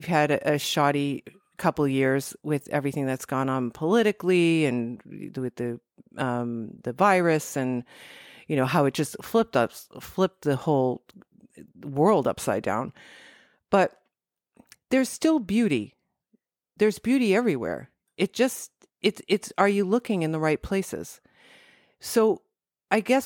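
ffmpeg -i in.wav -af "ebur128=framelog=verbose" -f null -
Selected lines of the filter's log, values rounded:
Integrated loudness:
  I:         -25.2 LUFS
  Threshold: -36.2 LUFS
Loudness range:
  LRA:         2.1 LU
  Threshold: -46.4 LUFS
  LRA low:   -27.3 LUFS
  LRA high:  -25.2 LUFS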